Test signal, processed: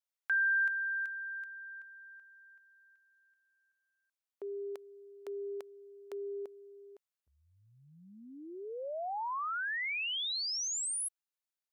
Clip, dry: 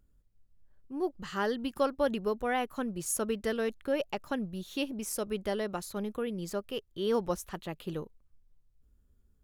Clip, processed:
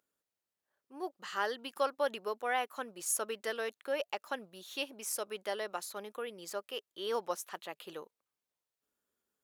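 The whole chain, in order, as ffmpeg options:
ffmpeg -i in.wav -af "highpass=600" out.wav

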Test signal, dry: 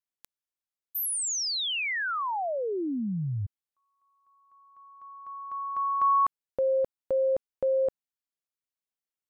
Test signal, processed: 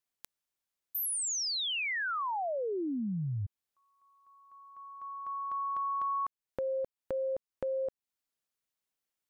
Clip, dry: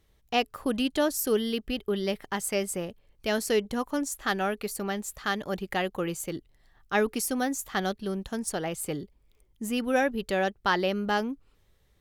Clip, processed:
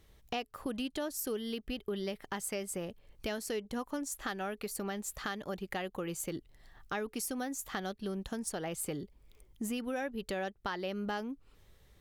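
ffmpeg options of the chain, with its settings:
ffmpeg -i in.wav -af "acompressor=threshold=-36dB:ratio=6:attack=2.9:release=562:knee=6:detection=peak,volume=4dB" out.wav

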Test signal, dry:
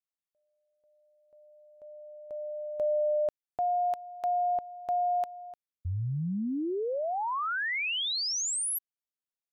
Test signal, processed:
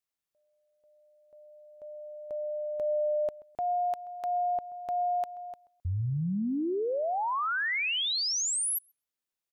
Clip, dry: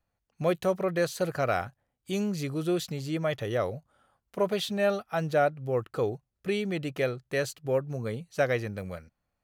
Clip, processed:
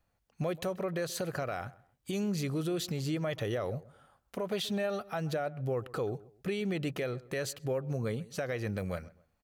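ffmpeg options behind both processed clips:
ffmpeg -i in.wav -filter_complex "[0:a]asplit=2[link_01][link_02];[link_02]acompressor=threshold=-35dB:ratio=6:attack=7.8:release=64:knee=6,volume=2.5dB[link_03];[link_01][link_03]amix=inputs=2:normalize=0,alimiter=limit=-21.5dB:level=0:latency=1:release=161,asplit=2[link_04][link_05];[link_05]adelay=131,lowpass=frequency=1900:poles=1,volume=-19.5dB,asplit=2[link_06][link_07];[link_07]adelay=131,lowpass=frequency=1900:poles=1,volume=0.3[link_08];[link_04][link_06][link_08]amix=inputs=3:normalize=0,volume=-3.5dB" out.wav

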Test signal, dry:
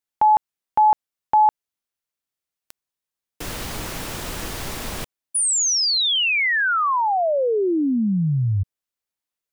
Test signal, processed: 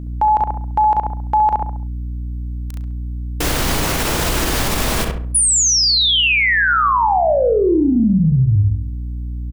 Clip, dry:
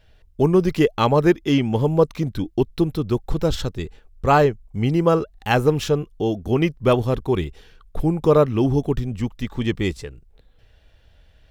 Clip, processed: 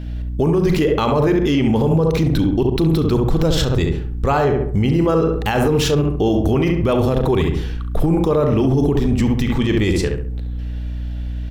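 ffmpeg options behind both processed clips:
ffmpeg -i in.wav -filter_complex "[0:a]bandreject=frequency=60:width_type=h:width=6,bandreject=frequency=120:width_type=h:width=6,bandreject=frequency=180:width_type=h:width=6,areverse,acompressor=threshold=-22dB:ratio=6:attack=19:release=76:knee=1:detection=peak,areverse,aeval=exprs='val(0)+0.01*(sin(2*PI*60*n/s)+sin(2*PI*2*60*n/s)/2+sin(2*PI*3*60*n/s)/3+sin(2*PI*4*60*n/s)/4+sin(2*PI*5*60*n/s)/5)':channel_layout=same,asplit=2[link_01][link_02];[link_02]adelay=37,volume=-13dB[link_03];[link_01][link_03]amix=inputs=2:normalize=0,asplit=2[link_04][link_05];[link_05]adelay=68,lowpass=frequency=1800:poles=1,volume=-5dB,asplit=2[link_06][link_07];[link_07]adelay=68,lowpass=frequency=1800:poles=1,volume=0.42,asplit=2[link_08][link_09];[link_09]adelay=68,lowpass=frequency=1800:poles=1,volume=0.42,asplit=2[link_10][link_11];[link_11]adelay=68,lowpass=frequency=1800:poles=1,volume=0.42,asplit=2[link_12][link_13];[link_13]adelay=68,lowpass=frequency=1800:poles=1,volume=0.42[link_14];[link_06][link_08][link_10][link_12][link_14]amix=inputs=5:normalize=0[link_15];[link_04][link_15]amix=inputs=2:normalize=0,alimiter=level_in=20.5dB:limit=-1dB:release=50:level=0:latency=1,volume=-7.5dB" out.wav

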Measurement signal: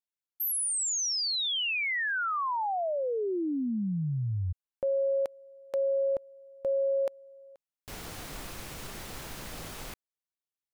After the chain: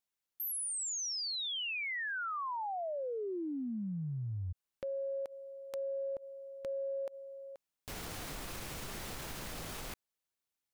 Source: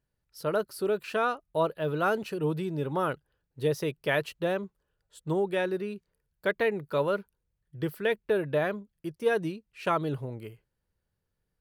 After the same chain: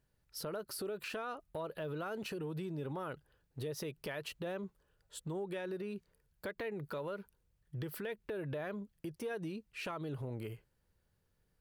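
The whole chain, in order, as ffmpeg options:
ffmpeg -i in.wav -af "acompressor=threshold=-41dB:ratio=6:attack=0.65:release=125:knee=1:detection=peak,volume=4dB" out.wav

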